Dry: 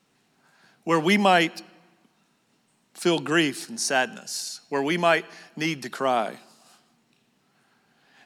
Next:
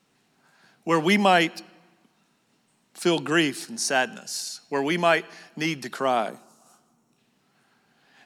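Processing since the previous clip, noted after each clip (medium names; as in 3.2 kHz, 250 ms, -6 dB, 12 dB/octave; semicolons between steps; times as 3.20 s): time-frequency box 6.30–7.18 s, 1.5–5.4 kHz -10 dB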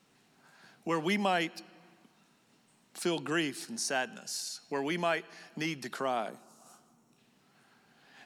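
compression 1.5:1, threshold -45 dBFS, peak gain reduction 11 dB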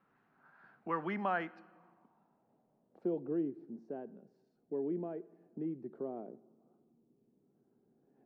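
low-pass sweep 1.4 kHz -> 390 Hz, 1.55–3.43 s; on a send at -22.5 dB: reverberation RT60 0.55 s, pre-delay 42 ms; on the sum: trim -7.5 dB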